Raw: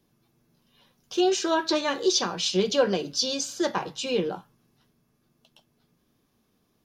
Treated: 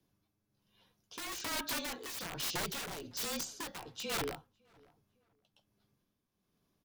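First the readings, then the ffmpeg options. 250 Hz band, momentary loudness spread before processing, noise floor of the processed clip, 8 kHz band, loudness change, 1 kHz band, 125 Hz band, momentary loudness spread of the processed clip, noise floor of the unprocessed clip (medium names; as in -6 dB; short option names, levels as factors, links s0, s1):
-18.0 dB, 6 LU, -83 dBFS, -9.5 dB, -12.5 dB, -13.0 dB, -11.0 dB, 8 LU, -71 dBFS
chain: -filter_complex "[0:a]aeval=exprs='(mod(12.6*val(0)+1,2)-1)/12.6':c=same,afreqshift=-32,asplit=2[s0][s1];[s1]adelay=556,lowpass=f=1800:p=1,volume=0.0668,asplit=2[s2][s3];[s3]adelay=556,lowpass=f=1800:p=1,volume=0.34[s4];[s2][s4]amix=inputs=2:normalize=0[s5];[s0][s5]amix=inputs=2:normalize=0,tremolo=f=1.2:d=0.59,volume=0.398"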